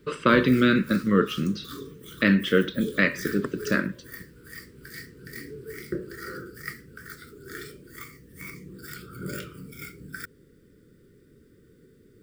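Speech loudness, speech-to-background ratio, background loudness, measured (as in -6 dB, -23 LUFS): -23.5 LUFS, 16.0 dB, -39.5 LUFS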